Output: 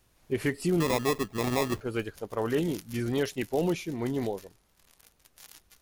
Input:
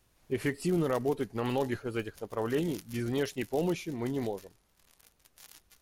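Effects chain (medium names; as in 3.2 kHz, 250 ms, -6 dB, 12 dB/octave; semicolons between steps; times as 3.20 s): 0.80–1.81 s: sample-rate reducer 1.5 kHz, jitter 0%; trim +2.5 dB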